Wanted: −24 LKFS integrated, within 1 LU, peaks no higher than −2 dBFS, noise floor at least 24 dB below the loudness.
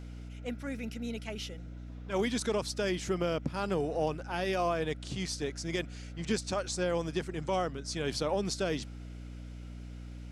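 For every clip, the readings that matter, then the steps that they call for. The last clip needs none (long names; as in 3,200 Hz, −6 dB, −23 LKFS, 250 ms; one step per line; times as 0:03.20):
mains hum 60 Hz; hum harmonics up to 300 Hz; level of the hum −41 dBFS; integrated loudness −34.0 LKFS; sample peak −19.0 dBFS; target loudness −24.0 LKFS
→ mains-hum notches 60/120/180/240/300 Hz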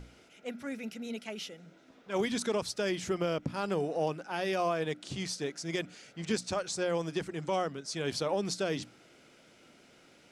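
mains hum none found; integrated loudness −34.0 LKFS; sample peak −19.5 dBFS; target loudness −24.0 LKFS
→ level +10 dB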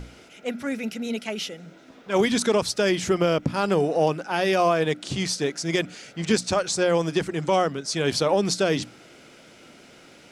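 integrated loudness −24.0 LKFS; sample peak −9.5 dBFS; background noise floor −50 dBFS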